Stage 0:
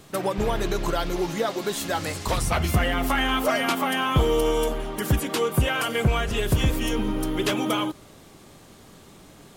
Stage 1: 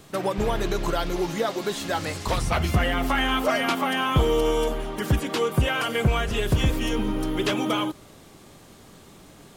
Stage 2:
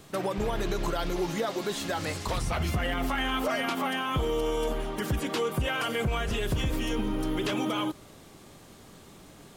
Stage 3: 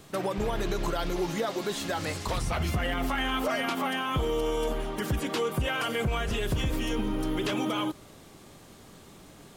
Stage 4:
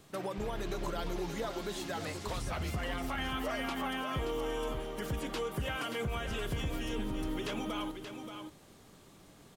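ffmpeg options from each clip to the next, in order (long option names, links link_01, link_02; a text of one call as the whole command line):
ffmpeg -i in.wav -filter_complex "[0:a]acrossover=split=6500[link_01][link_02];[link_02]acompressor=threshold=-41dB:ratio=4:attack=1:release=60[link_03];[link_01][link_03]amix=inputs=2:normalize=0" out.wav
ffmpeg -i in.wav -af "alimiter=limit=-18.5dB:level=0:latency=1:release=47,volume=-2dB" out.wav
ffmpeg -i in.wav -af anull out.wav
ffmpeg -i in.wav -af "aecho=1:1:578:0.398,volume=-7.5dB" out.wav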